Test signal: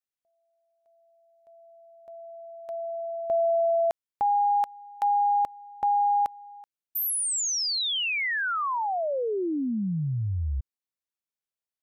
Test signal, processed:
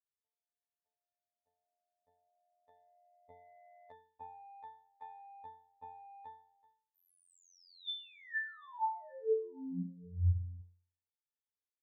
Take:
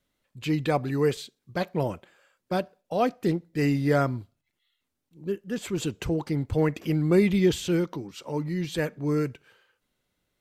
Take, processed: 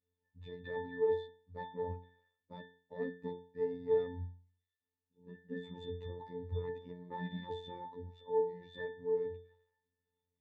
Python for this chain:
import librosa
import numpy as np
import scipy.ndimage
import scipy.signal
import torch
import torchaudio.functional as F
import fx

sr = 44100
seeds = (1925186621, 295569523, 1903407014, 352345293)

y = fx.cheby_harmonics(x, sr, harmonics=(5,), levels_db=(-9,), full_scale_db=-10.5)
y = fx.octave_resonator(y, sr, note='A', decay_s=0.45)
y = fx.robotise(y, sr, hz=88.3)